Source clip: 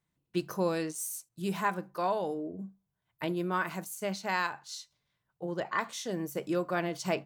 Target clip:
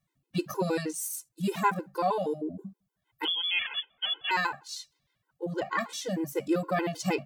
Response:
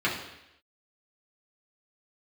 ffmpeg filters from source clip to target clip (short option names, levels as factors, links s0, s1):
-filter_complex "[0:a]asettb=1/sr,asplit=3[s0][s1][s2];[s0]atrim=end=3.254[s3];[s1]atrim=start=3.25:end=4.31,asetpts=PTS-STARTPTS,afade=t=in:d=0.004:c=qsin,afade=t=out:st=1.056:d=0.004:c=qsin,lowpass=f=3100:t=q:w=0.5098,lowpass=f=3100:t=q:w=0.6013,lowpass=f=3100:t=q:w=0.9,lowpass=f=3100:t=q:w=2.563,afreqshift=-3600[s4];[s2]atrim=start=4.306[s5];[s3][s4]acrossfade=d=0.004:c1=hsin:c2=qsin[s6];[s6][s5]acrossfade=d=0.004:c1=qsin:c2=hsin,afftfilt=real='re*gt(sin(2*PI*6.4*pts/sr)*(1-2*mod(floor(b*sr/1024/270),2)),0)':imag='im*gt(sin(2*PI*6.4*pts/sr)*(1-2*mod(floor(b*sr/1024/270),2)),0)':win_size=1024:overlap=0.75,volume=2"